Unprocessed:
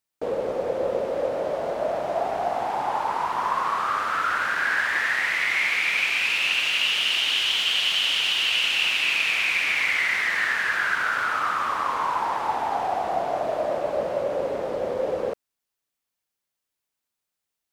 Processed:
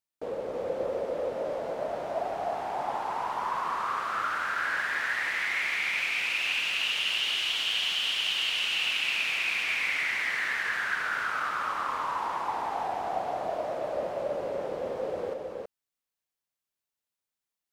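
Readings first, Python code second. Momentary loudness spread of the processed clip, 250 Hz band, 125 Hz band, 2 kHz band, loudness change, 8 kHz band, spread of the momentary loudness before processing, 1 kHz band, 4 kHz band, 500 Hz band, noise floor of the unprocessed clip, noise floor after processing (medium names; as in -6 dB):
8 LU, -6.0 dB, no reading, -6.0 dB, -6.0 dB, -6.0 dB, 7 LU, -6.0 dB, -6.0 dB, -6.0 dB, -84 dBFS, under -85 dBFS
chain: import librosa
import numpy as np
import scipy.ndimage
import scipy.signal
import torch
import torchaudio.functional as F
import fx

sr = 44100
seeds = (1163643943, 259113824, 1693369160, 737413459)

y = x + 10.0 ** (-3.5 / 20.0) * np.pad(x, (int(321 * sr / 1000.0), 0))[:len(x)]
y = y * librosa.db_to_amplitude(-7.5)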